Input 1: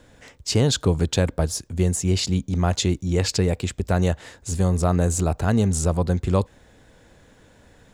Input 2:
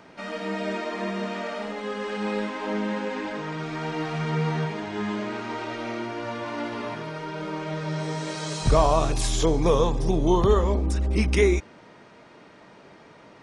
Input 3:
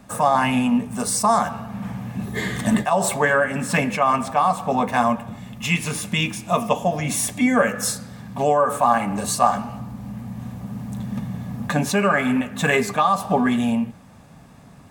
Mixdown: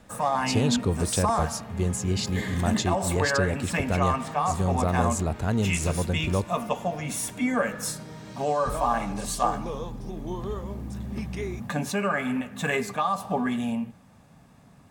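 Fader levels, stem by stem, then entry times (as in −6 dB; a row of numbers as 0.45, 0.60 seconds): −5.5, −14.0, −7.5 decibels; 0.00, 0.00, 0.00 seconds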